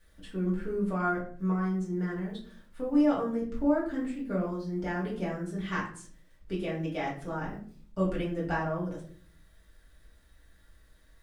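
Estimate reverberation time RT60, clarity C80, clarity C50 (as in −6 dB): 0.50 s, 11.0 dB, 6.5 dB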